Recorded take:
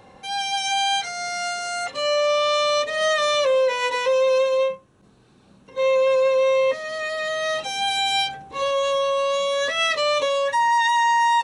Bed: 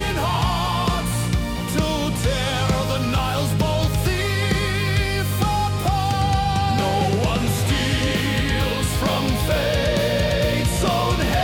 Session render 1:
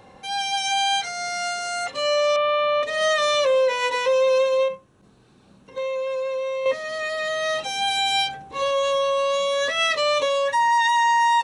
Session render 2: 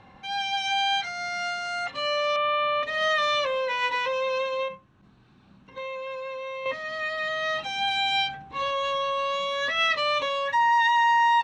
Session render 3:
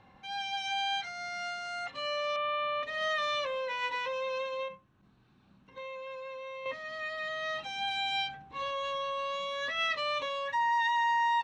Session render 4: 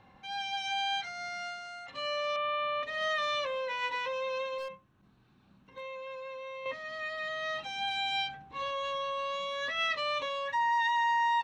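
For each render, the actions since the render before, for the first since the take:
2.36–2.83 s: low-pass 2.8 kHz 24 dB/octave; 4.68–6.66 s: compression, threshold -24 dBFS
low-pass 3.4 kHz 12 dB/octave; peaking EQ 480 Hz -10.5 dB 0.94 oct
trim -7.5 dB
1.27–1.88 s: fade out linear, to -9.5 dB; 4.58–5.82 s: overload inside the chain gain 34 dB

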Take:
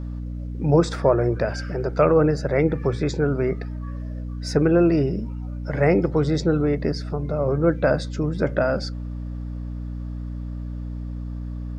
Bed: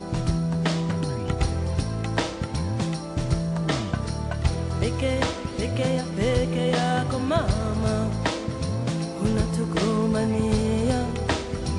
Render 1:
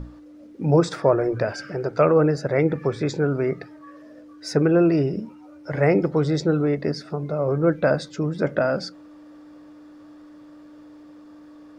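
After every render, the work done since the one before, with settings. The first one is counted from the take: hum notches 60/120/180/240 Hz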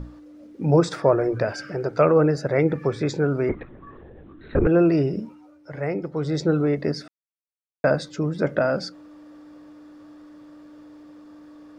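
3.49–4.67 s: LPC vocoder at 8 kHz whisper; 5.23–6.47 s: dip -8.5 dB, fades 0.36 s; 7.08–7.84 s: mute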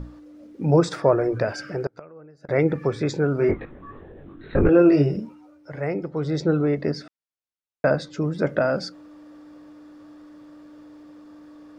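1.82–2.49 s: inverted gate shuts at -16 dBFS, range -28 dB; 3.37–5.17 s: doubling 21 ms -2.5 dB; 6.04–8.16 s: distance through air 50 m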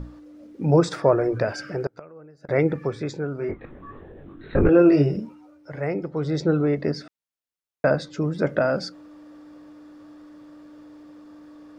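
2.58–3.64 s: fade out quadratic, to -8.5 dB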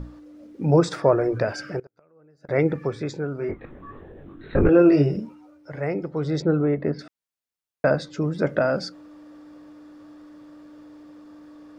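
1.80–2.60 s: fade in quadratic, from -22 dB; 6.42–6.99 s: Gaussian low-pass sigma 2.9 samples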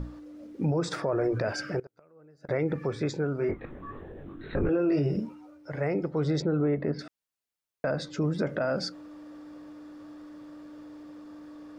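compression 2.5:1, threshold -21 dBFS, peak gain reduction 7 dB; peak limiter -18.5 dBFS, peak gain reduction 8.5 dB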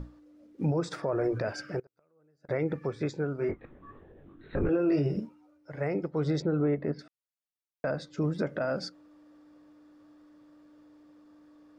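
upward expansion 1.5:1, over -45 dBFS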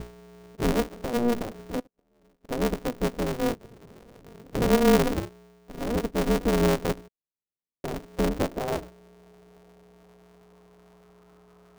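low-pass sweep 330 Hz -> 1.1 kHz, 7.87–11.16 s; polarity switched at an audio rate 120 Hz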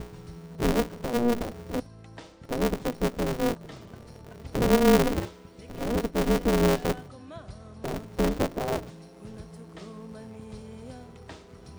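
add bed -20 dB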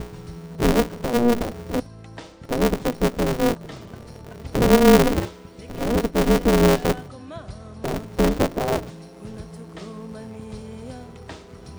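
trim +6 dB

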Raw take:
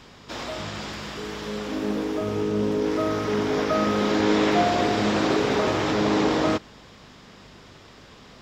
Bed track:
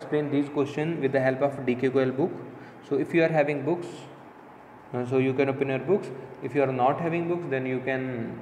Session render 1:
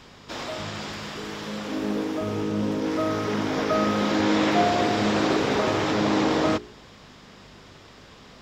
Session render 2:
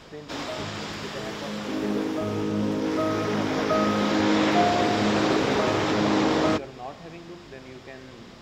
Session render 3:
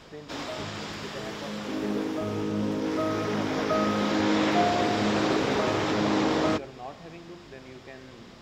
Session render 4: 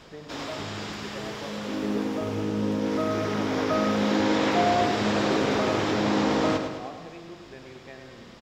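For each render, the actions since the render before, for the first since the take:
de-hum 60 Hz, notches 7
add bed track -15 dB
trim -2.5 dB
feedback delay 106 ms, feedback 58%, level -8 dB

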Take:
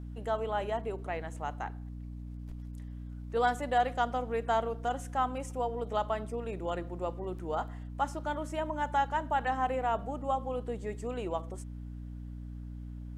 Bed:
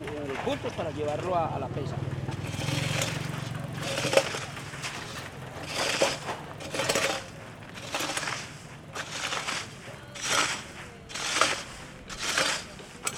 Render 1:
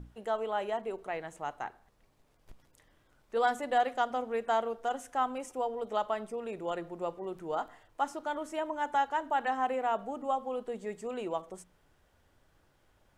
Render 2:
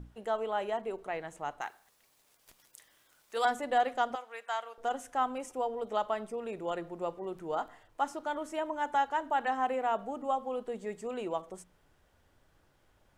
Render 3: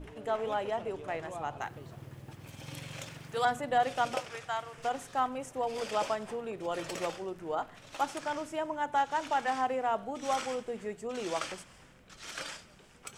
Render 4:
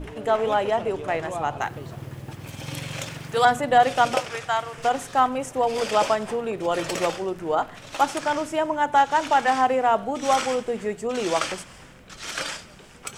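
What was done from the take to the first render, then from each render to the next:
hum notches 60/120/180/240/300 Hz
1.61–3.45 s: tilt EQ +4 dB/octave; 4.15–4.78 s: high-pass 1.1 kHz
add bed -14.5 dB
trim +10.5 dB

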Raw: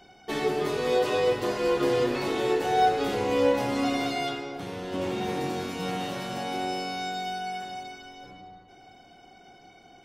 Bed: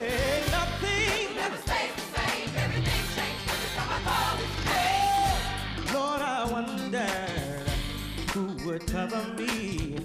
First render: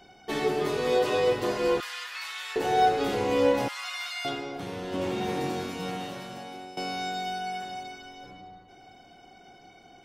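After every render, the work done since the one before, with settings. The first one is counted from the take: 1.80–2.56 s: high-pass 1.3 kHz 24 dB/octave; 3.68–4.25 s: inverse Chebyshev high-pass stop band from 260 Hz, stop band 70 dB; 5.49–6.77 s: fade out, to -15.5 dB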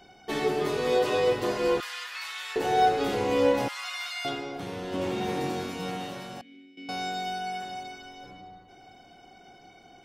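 6.41–6.89 s: vowel filter i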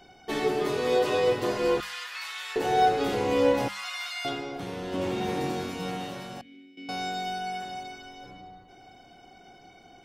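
bass shelf 140 Hz +3.5 dB; hum notches 50/100/150/200 Hz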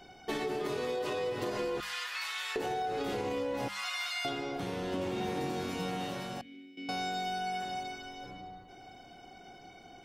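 peak limiter -20 dBFS, peak gain reduction 8.5 dB; compression, threshold -31 dBFS, peak gain reduction 7 dB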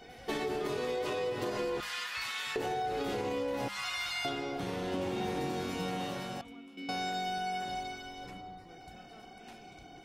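add bed -26.5 dB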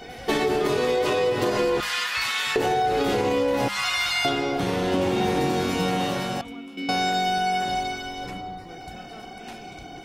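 trim +11.5 dB

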